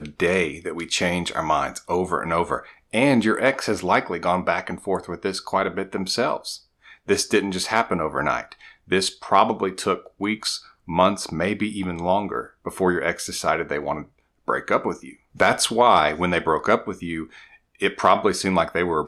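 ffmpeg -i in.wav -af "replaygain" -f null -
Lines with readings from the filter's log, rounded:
track_gain = +1.8 dB
track_peak = 0.480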